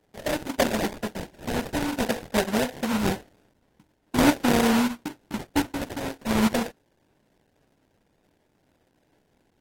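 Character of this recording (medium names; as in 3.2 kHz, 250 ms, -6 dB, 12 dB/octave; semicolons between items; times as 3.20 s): a buzz of ramps at a fixed pitch in blocks of 8 samples; phasing stages 2, 0.48 Hz, lowest notch 650–3500 Hz; aliases and images of a low sample rate 1.2 kHz, jitter 20%; AAC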